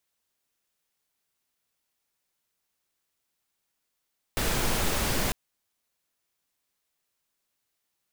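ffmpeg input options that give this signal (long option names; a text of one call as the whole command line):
ffmpeg -f lavfi -i "anoisesrc=color=pink:amplitude=0.243:duration=0.95:sample_rate=44100:seed=1" out.wav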